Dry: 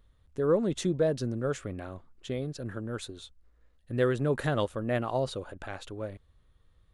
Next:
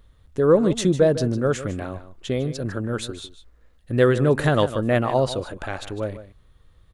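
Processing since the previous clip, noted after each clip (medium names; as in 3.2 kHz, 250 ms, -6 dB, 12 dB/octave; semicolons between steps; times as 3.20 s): delay 152 ms -13.5 dB; trim +9 dB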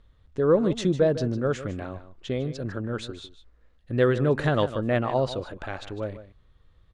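low-pass 5.4 kHz 12 dB/octave; trim -4 dB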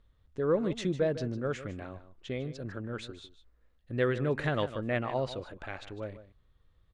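dynamic bell 2.2 kHz, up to +7 dB, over -49 dBFS, Q 1.9; trim -7.5 dB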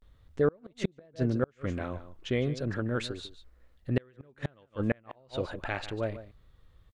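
inverted gate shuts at -22 dBFS, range -36 dB; vibrato 0.37 Hz 78 cents; trim +7 dB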